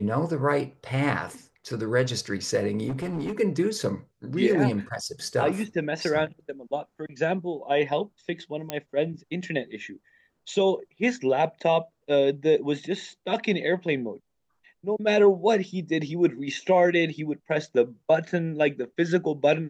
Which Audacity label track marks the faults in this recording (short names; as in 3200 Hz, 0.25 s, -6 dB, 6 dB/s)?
2.890000	3.330000	clipped -26 dBFS
8.700000	8.700000	pop -12 dBFS